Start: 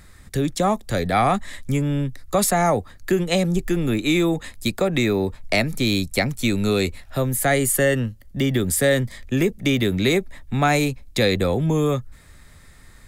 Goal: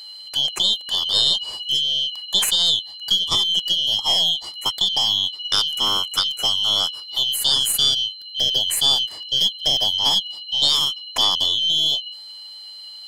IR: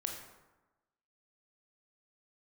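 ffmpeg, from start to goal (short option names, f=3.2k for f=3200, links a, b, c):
-af "afftfilt=real='real(if(lt(b,272),68*(eq(floor(b/68),0)*2+eq(floor(b/68),1)*3+eq(floor(b/68),2)*0+eq(floor(b/68),3)*1)+mod(b,68),b),0)':imag='imag(if(lt(b,272),68*(eq(floor(b/68),0)*2+eq(floor(b/68),1)*3+eq(floor(b/68),2)*0+eq(floor(b/68),3)*1)+mod(b,68),b),0)':win_size=2048:overlap=0.75,aeval=exprs='0.562*(cos(1*acos(clip(val(0)/0.562,-1,1)))-cos(1*PI/2))+0.112*(cos(2*acos(clip(val(0)/0.562,-1,1)))-cos(2*PI/2))+0.00398*(cos(6*acos(clip(val(0)/0.562,-1,1)))-cos(6*PI/2))+0.00316*(cos(8*acos(clip(val(0)/0.562,-1,1)))-cos(8*PI/2))':c=same,aeval=exprs='val(0)+0.0158*sin(2*PI*4100*n/s)':c=same"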